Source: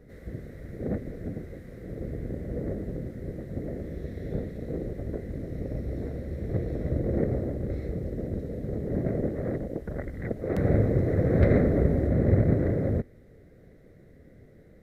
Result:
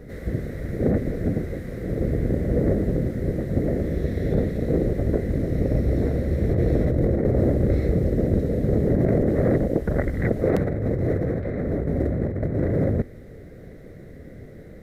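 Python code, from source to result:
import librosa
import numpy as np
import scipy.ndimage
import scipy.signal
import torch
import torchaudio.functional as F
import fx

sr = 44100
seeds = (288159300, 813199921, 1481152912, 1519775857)

y = fx.over_compress(x, sr, threshold_db=-29.0, ratio=-1.0)
y = y * 10.0 ** (8.5 / 20.0)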